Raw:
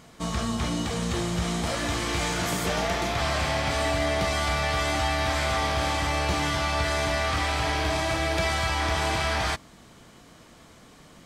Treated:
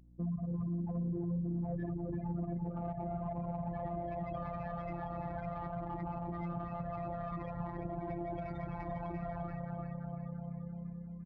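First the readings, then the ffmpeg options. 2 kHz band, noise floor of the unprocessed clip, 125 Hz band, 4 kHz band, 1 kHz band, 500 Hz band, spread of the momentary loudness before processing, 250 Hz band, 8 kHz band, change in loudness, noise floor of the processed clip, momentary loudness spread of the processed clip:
-28.0 dB, -52 dBFS, -8.0 dB, under -40 dB, -14.5 dB, -13.0 dB, 3 LU, -6.5 dB, under -40 dB, -14.0 dB, -45 dBFS, 6 LU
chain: -filter_complex "[0:a]aeval=exprs='max(val(0),0)':c=same,acompressor=threshold=-49dB:ratio=2,highshelf=f=6.8k:g=8,afftfilt=real='re*gte(hypot(re,im),0.02)':imag='im*gte(hypot(re,im),0.02)':win_size=1024:overlap=0.75,lowshelf=f=220:g=10,asplit=9[a][b][c][d][e][f][g][h][i];[b]adelay=343,afreqshift=-32,volume=-6dB[j];[c]adelay=686,afreqshift=-64,volume=-10.6dB[k];[d]adelay=1029,afreqshift=-96,volume=-15.2dB[l];[e]adelay=1372,afreqshift=-128,volume=-19.7dB[m];[f]adelay=1715,afreqshift=-160,volume=-24.3dB[n];[g]adelay=2058,afreqshift=-192,volume=-28.9dB[o];[h]adelay=2401,afreqshift=-224,volume=-33.5dB[p];[i]adelay=2744,afreqshift=-256,volume=-38.1dB[q];[a][j][k][l][m][n][o][p][q]amix=inputs=9:normalize=0,afftfilt=real='hypot(re,im)*cos(PI*b)':imag='0':win_size=1024:overlap=0.75,highpass=100,adynamicsmooth=sensitivity=5.5:basefreq=1.2k,alimiter=level_in=21dB:limit=-24dB:level=0:latency=1:release=121,volume=-21dB,aeval=exprs='val(0)+0.000224*(sin(2*PI*60*n/s)+sin(2*PI*2*60*n/s)/2+sin(2*PI*3*60*n/s)/3+sin(2*PI*4*60*n/s)/4+sin(2*PI*5*60*n/s)/5)':c=same,volume=14.5dB"

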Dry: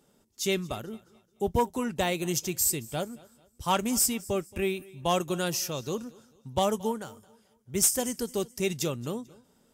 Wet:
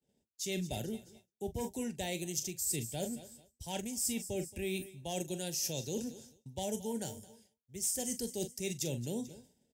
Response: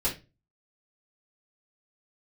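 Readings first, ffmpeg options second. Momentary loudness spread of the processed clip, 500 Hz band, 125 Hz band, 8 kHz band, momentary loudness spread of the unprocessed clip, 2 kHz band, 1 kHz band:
12 LU, -9.5 dB, -5.5 dB, -7.0 dB, 13 LU, -10.0 dB, -15.5 dB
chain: -filter_complex "[0:a]lowshelf=f=130:g=7,asplit=2[a][b];[b]adelay=43,volume=-13.5dB[c];[a][c]amix=inputs=2:normalize=0,acrossover=split=160|5100[d][e][f];[f]dynaudnorm=f=110:g=7:m=11.5dB[g];[d][e][g]amix=inputs=3:normalize=0,highpass=47,equalizer=f=13k:t=o:w=0.73:g=-6.5,areverse,acompressor=threshold=-34dB:ratio=6,areverse,asuperstop=centerf=1200:order=4:qfactor=1.4,agate=range=-33dB:threshold=-54dB:ratio=3:detection=peak"

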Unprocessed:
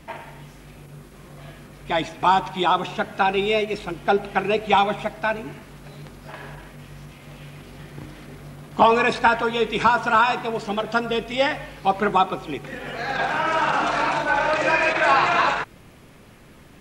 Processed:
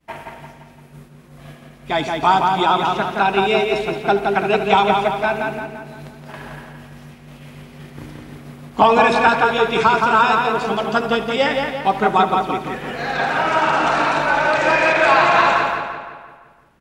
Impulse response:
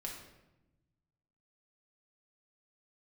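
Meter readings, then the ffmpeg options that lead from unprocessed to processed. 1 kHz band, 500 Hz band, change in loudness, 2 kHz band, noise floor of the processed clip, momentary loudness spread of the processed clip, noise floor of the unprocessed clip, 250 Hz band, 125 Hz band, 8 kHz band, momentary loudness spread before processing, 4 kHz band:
+4.5 dB, +5.0 dB, +4.5 dB, +4.5 dB, -45 dBFS, 21 LU, -48 dBFS, +4.5 dB, +4.0 dB, n/a, 22 LU, +4.0 dB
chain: -filter_complex "[0:a]asplit=2[a][b];[b]aecho=0:1:75:0.188[c];[a][c]amix=inputs=2:normalize=0,agate=range=-33dB:threshold=-36dB:ratio=3:detection=peak,asplit=2[d][e];[e]adelay=171,lowpass=f=4.3k:p=1,volume=-3.5dB,asplit=2[f][g];[g]adelay=171,lowpass=f=4.3k:p=1,volume=0.51,asplit=2[h][i];[i]adelay=171,lowpass=f=4.3k:p=1,volume=0.51,asplit=2[j][k];[k]adelay=171,lowpass=f=4.3k:p=1,volume=0.51,asplit=2[l][m];[m]adelay=171,lowpass=f=4.3k:p=1,volume=0.51,asplit=2[n][o];[o]adelay=171,lowpass=f=4.3k:p=1,volume=0.51,asplit=2[p][q];[q]adelay=171,lowpass=f=4.3k:p=1,volume=0.51[r];[f][h][j][l][n][p][r]amix=inputs=7:normalize=0[s];[d][s]amix=inputs=2:normalize=0,volume=2.5dB"

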